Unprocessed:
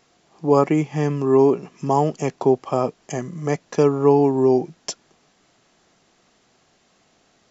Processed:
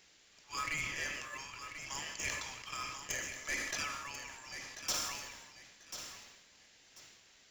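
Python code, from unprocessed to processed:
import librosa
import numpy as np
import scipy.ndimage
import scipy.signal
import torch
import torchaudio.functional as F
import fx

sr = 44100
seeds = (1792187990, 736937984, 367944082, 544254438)

p1 = scipy.signal.sosfilt(scipy.signal.butter(6, 1600.0, 'highpass', fs=sr, output='sos'), x)
p2 = fx.sample_hold(p1, sr, seeds[0], rate_hz=2300.0, jitter_pct=0)
p3 = p1 + F.gain(torch.from_numpy(p2), -9.5).numpy()
p4 = np.clip(p3, -10.0 ** (-31.0 / 20.0), 10.0 ** (-31.0 / 20.0))
p5 = p4 + fx.echo_feedback(p4, sr, ms=1040, feedback_pct=25, wet_db=-10.0, dry=0)
p6 = fx.rev_plate(p5, sr, seeds[1], rt60_s=1.9, hf_ratio=0.75, predelay_ms=0, drr_db=9.5)
y = fx.sustainer(p6, sr, db_per_s=41.0)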